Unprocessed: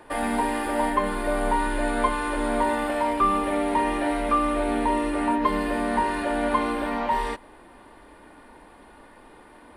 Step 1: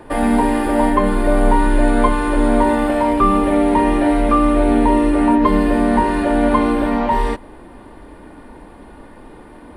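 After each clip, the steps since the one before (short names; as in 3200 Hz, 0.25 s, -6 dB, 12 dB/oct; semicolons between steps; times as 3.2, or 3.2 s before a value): low shelf 490 Hz +11.5 dB; gain +3.5 dB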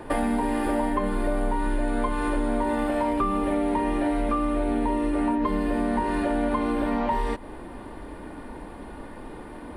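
compressor 6:1, threshold -22 dBFS, peak gain reduction 13 dB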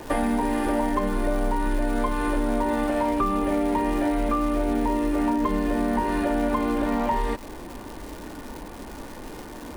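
crackle 480/s -34 dBFS; gain +1 dB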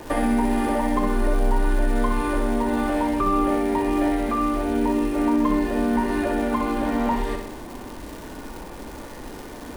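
flutter echo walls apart 10.9 m, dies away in 0.74 s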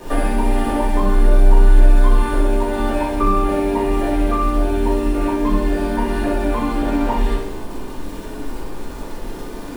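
reverb RT60 0.45 s, pre-delay 4 ms, DRR -6 dB; gain -3.5 dB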